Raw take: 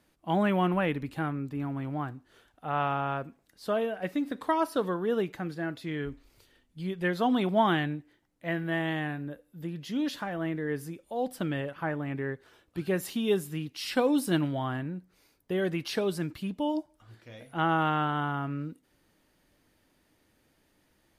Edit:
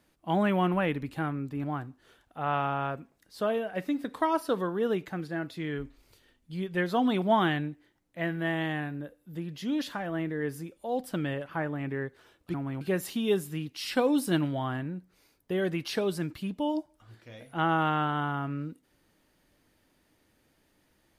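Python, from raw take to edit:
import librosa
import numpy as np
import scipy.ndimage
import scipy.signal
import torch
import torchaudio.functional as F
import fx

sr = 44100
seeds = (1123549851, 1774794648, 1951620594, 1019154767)

y = fx.edit(x, sr, fx.move(start_s=1.64, length_s=0.27, to_s=12.81), tone=tone)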